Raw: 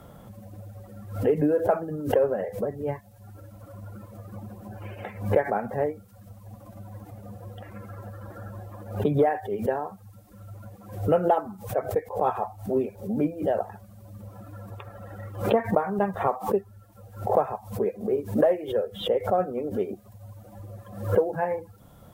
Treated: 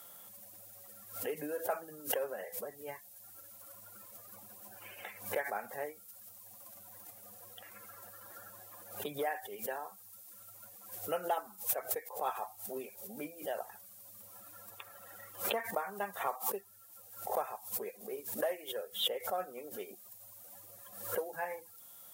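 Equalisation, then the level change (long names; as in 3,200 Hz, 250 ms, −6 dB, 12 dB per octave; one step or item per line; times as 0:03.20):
first difference
+8.0 dB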